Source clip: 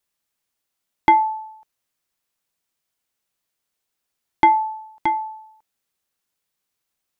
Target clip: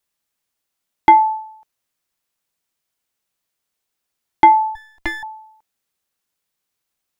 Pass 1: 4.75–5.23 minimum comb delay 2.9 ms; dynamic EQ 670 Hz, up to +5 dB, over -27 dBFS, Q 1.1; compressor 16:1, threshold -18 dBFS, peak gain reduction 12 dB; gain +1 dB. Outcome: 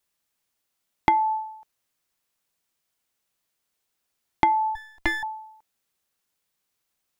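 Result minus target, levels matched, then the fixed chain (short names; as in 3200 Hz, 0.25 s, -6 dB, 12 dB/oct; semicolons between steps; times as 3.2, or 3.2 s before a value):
compressor: peak gain reduction +12 dB
4.75–5.23 minimum comb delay 2.9 ms; dynamic EQ 670 Hz, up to +5 dB, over -27 dBFS, Q 1.1; gain +1 dB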